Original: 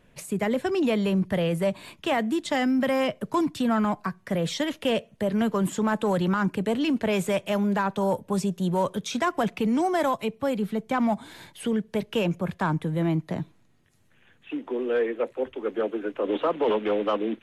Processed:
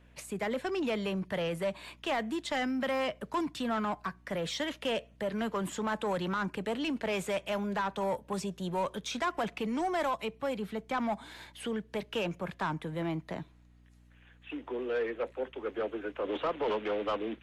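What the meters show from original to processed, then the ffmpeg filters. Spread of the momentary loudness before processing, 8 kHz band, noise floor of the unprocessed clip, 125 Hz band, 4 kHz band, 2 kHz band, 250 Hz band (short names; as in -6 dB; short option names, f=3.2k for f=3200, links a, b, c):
6 LU, -6.0 dB, -60 dBFS, -11.0 dB, -4.0 dB, -4.5 dB, -10.0 dB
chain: -filter_complex "[0:a]asplit=2[a][b];[b]highpass=f=720:p=1,volume=12dB,asoftclip=type=tanh:threshold=-15dB[c];[a][c]amix=inputs=2:normalize=0,lowpass=f=4.9k:p=1,volume=-6dB,aeval=exprs='val(0)+0.00316*(sin(2*PI*60*n/s)+sin(2*PI*2*60*n/s)/2+sin(2*PI*3*60*n/s)/3+sin(2*PI*4*60*n/s)/4+sin(2*PI*5*60*n/s)/5)':c=same,volume=-8.5dB"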